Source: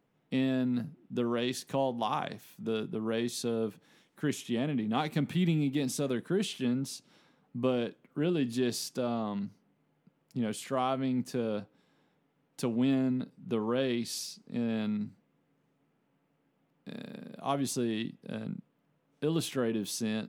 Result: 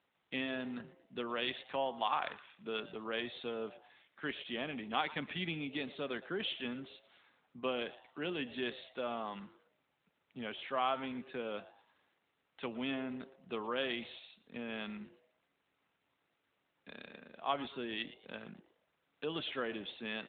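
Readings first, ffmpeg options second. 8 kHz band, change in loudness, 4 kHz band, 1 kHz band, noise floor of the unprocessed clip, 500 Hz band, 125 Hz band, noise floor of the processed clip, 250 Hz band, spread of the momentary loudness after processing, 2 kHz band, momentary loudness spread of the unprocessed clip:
under -40 dB, -7.0 dB, -1.0 dB, -2.0 dB, -74 dBFS, -7.0 dB, -16.5 dB, -81 dBFS, -12.0 dB, 14 LU, +1.5 dB, 10 LU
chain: -filter_complex "[0:a]bandpass=f=2.4k:t=q:w=0.59:csg=0,asplit=2[a][b];[b]asplit=3[c][d][e];[c]adelay=115,afreqshift=140,volume=-17dB[f];[d]adelay=230,afreqshift=280,volume=-25.9dB[g];[e]adelay=345,afreqshift=420,volume=-34.7dB[h];[f][g][h]amix=inputs=3:normalize=0[i];[a][i]amix=inputs=2:normalize=0,volume=3dB" -ar 8000 -c:a libopencore_amrnb -b:a 12200

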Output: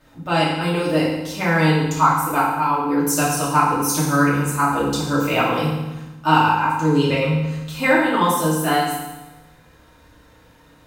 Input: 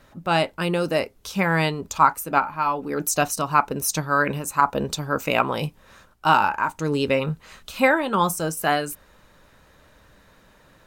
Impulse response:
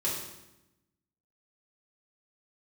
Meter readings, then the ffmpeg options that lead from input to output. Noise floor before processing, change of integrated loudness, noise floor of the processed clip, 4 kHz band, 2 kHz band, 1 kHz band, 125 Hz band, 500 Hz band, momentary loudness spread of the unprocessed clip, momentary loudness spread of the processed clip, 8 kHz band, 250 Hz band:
-56 dBFS, +3.5 dB, -51 dBFS, +3.5 dB, +2.5 dB, +3.0 dB, +7.5 dB, +2.5 dB, 7 LU, 7 LU, +3.0 dB, +7.5 dB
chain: -filter_complex "[1:a]atrim=start_sample=2205,asetrate=36162,aresample=44100[a];[0:a][a]afir=irnorm=-1:irlink=0,volume=-5dB"

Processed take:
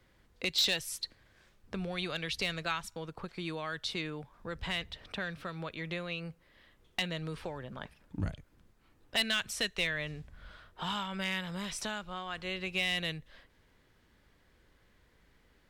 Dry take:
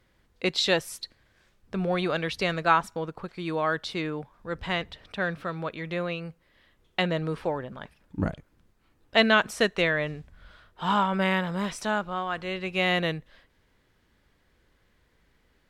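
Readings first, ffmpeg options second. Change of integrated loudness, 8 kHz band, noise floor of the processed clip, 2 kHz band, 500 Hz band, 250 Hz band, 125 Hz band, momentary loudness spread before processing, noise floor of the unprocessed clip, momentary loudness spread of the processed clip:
-7.5 dB, +0.5 dB, -67 dBFS, -7.5 dB, -13.0 dB, -10.5 dB, -8.0 dB, 14 LU, -67 dBFS, 13 LU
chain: -filter_complex "[0:a]acrossover=split=110|2300[a][b][c];[b]acompressor=threshold=-38dB:ratio=6[d];[a][d][c]amix=inputs=3:normalize=0,volume=21.5dB,asoftclip=hard,volume=-21.5dB"

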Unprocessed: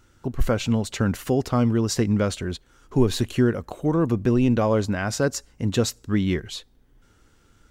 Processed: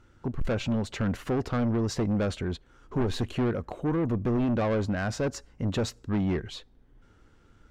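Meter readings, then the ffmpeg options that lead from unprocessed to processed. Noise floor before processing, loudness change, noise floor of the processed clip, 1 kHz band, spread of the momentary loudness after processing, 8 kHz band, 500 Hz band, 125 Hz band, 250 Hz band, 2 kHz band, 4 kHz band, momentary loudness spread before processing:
-59 dBFS, -5.5 dB, -60 dBFS, -5.0 dB, 8 LU, -11.0 dB, -6.0 dB, -5.5 dB, -5.5 dB, -5.0 dB, -7.0 dB, 8 LU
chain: -af "aemphasis=mode=reproduction:type=75kf,asoftclip=type=tanh:threshold=-22.5dB"

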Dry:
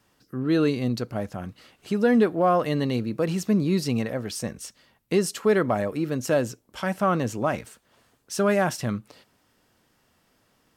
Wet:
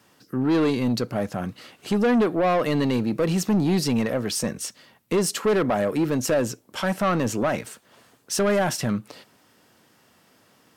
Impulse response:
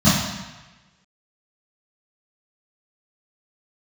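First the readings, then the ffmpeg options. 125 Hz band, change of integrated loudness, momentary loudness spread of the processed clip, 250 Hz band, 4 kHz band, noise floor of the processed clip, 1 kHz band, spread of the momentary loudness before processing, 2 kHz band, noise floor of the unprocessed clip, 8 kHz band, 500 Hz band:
+1.0 dB, +1.5 dB, 9 LU, +2.0 dB, +4.5 dB, -60 dBFS, +0.5 dB, 13 LU, +1.5 dB, -67 dBFS, +6.0 dB, +1.0 dB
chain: -filter_complex "[0:a]highpass=120,asplit=2[a][b];[b]alimiter=limit=-17.5dB:level=0:latency=1:release=231,volume=2.5dB[c];[a][c]amix=inputs=2:normalize=0,asoftclip=type=tanh:threshold=-16dB"

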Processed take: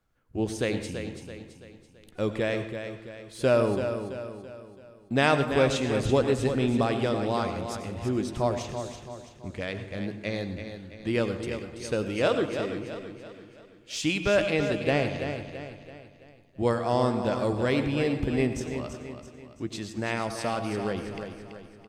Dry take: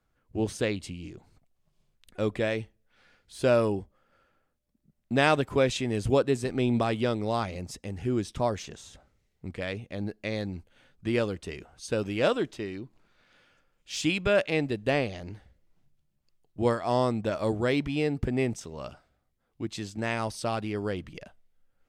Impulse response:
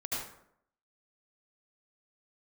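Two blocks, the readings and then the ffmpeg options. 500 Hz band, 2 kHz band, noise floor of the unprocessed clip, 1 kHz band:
+1.5 dB, +1.0 dB, -75 dBFS, +1.5 dB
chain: -filter_complex "[0:a]aecho=1:1:333|666|999|1332|1665:0.376|0.169|0.0761|0.0342|0.0154,asplit=2[a][b];[1:a]atrim=start_sample=2205,adelay=15[c];[b][c]afir=irnorm=-1:irlink=0,volume=-13dB[d];[a][d]amix=inputs=2:normalize=0"

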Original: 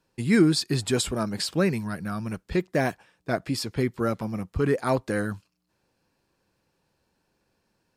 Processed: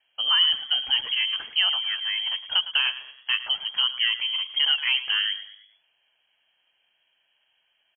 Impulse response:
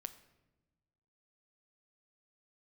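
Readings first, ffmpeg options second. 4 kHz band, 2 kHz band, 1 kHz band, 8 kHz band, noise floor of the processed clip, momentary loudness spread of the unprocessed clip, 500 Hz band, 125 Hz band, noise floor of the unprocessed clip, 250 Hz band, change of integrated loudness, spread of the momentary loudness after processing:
+16.0 dB, +6.0 dB, -5.0 dB, under -40 dB, -71 dBFS, 11 LU, under -25 dB, under -35 dB, -75 dBFS, under -35 dB, +4.0 dB, 7 LU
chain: -filter_complex "[0:a]acrossover=split=360|2100[a][b][c];[a]acompressor=threshold=-25dB:ratio=4[d];[b]acompressor=threshold=-27dB:ratio=4[e];[c]acompressor=threshold=-40dB:ratio=4[f];[d][e][f]amix=inputs=3:normalize=0,lowpass=f=2.8k:t=q:w=0.5098,lowpass=f=2.8k:t=q:w=0.6013,lowpass=f=2.8k:t=q:w=0.9,lowpass=f=2.8k:t=q:w=2.563,afreqshift=-3300,asplit=5[g][h][i][j][k];[h]adelay=108,afreqshift=51,volume=-14dB[l];[i]adelay=216,afreqshift=102,volume=-21.1dB[m];[j]adelay=324,afreqshift=153,volume=-28.3dB[n];[k]adelay=432,afreqshift=204,volume=-35.4dB[o];[g][l][m][n][o]amix=inputs=5:normalize=0,volume=3dB"

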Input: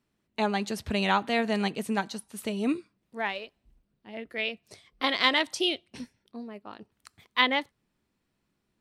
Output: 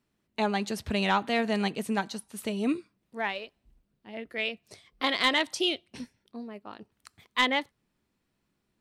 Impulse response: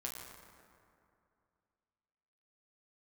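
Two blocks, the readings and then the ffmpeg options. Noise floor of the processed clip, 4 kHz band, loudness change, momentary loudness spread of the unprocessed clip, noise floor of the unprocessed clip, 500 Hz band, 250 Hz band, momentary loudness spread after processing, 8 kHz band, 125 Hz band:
-78 dBFS, -1.0 dB, -0.5 dB, 20 LU, -78 dBFS, -0.5 dB, 0.0 dB, 19 LU, +0.5 dB, 0.0 dB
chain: -af "asoftclip=type=tanh:threshold=-12dB"

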